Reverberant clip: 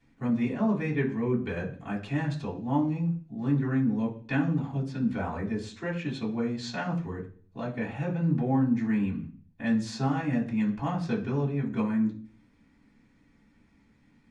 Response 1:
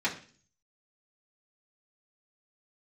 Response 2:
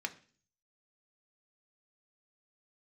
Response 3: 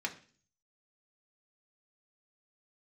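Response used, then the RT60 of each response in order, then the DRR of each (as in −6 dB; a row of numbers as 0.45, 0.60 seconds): 1; 0.45, 0.45, 0.45 seconds; −6.5, 5.0, 1.0 decibels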